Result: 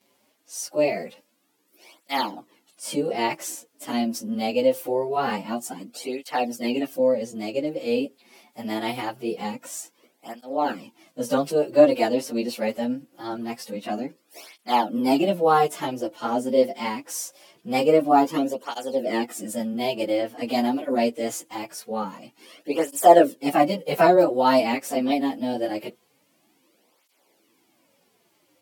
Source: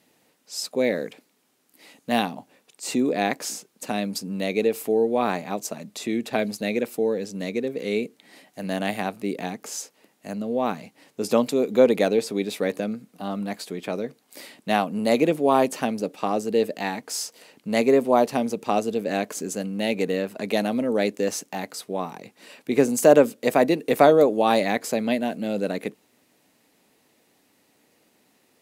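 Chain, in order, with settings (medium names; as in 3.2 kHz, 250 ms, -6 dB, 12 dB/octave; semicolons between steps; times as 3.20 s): frequency-domain pitch shifter +2.5 st; cancelling through-zero flanger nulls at 0.24 Hz, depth 6.7 ms; trim +5 dB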